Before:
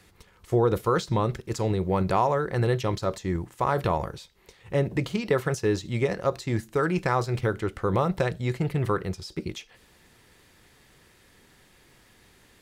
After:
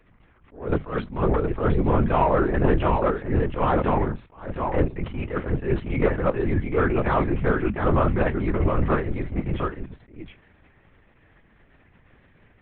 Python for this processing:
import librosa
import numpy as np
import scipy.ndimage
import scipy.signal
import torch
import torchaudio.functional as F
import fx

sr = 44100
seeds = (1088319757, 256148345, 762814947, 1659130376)

y = scipy.signal.sosfilt(scipy.signal.butter(4, 2500.0, 'lowpass', fs=sr, output='sos'), x)
y = fx.low_shelf(y, sr, hz=80.0, db=9.5)
y = fx.hum_notches(y, sr, base_hz=60, count=3)
y = fx.leveller(y, sr, passes=1)
y = y + 10.0 ** (-4.0 / 20.0) * np.pad(y, (int(714 * sr / 1000.0), 0))[:len(y)]
y = fx.lpc_vocoder(y, sr, seeds[0], excitation='whisper', order=10)
y = fx.attack_slew(y, sr, db_per_s=140.0)